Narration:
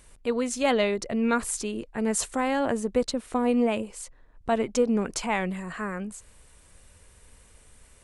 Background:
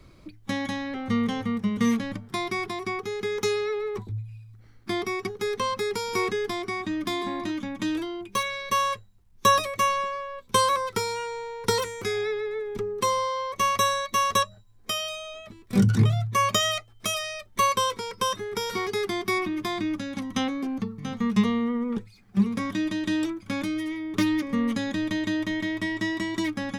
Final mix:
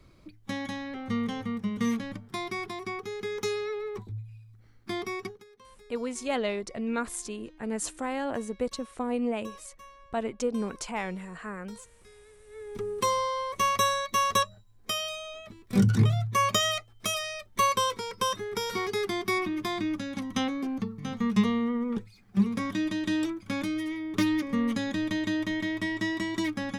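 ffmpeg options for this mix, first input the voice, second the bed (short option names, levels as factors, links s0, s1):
-filter_complex "[0:a]adelay=5650,volume=0.501[s0];[1:a]volume=10.6,afade=t=out:st=5.23:d=0.21:silence=0.0749894,afade=t=in:st=12.46:d=0.46:silence=0.0530884[s1];[s0][s1]amix=inputs=2:normalize=0"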